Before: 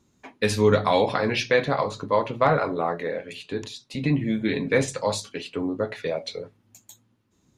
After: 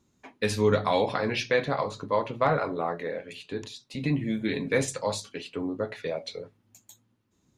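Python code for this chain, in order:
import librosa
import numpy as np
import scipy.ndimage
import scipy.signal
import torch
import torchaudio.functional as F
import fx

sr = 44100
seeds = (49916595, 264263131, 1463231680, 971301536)

y = fx.high_shelf(x, sr, hz=8300.0, db=10.0, at=(4.0, 4.98))
y = F.gain(torch.from_numpy(y), -4.0).numpy()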